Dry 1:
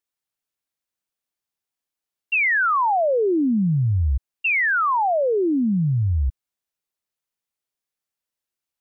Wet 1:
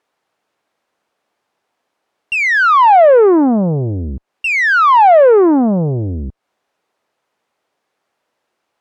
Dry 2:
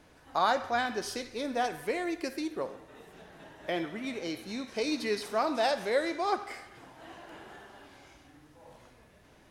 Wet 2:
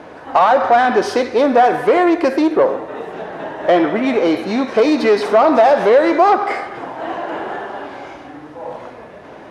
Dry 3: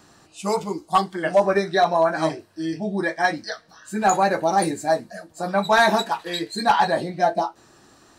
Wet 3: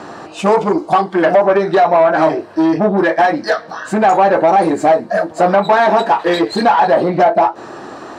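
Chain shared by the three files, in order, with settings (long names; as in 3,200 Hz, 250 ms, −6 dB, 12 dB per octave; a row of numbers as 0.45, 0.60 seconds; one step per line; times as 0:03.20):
downward compressor 10 to 1, threshold −28 dBFS
tube saturation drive 32 dB, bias 0.3
resonant band-pass 640 Hz, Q 0.74
normalise the peak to −3 dBFS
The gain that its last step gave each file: +28.0, +27.0, +27.0 decibels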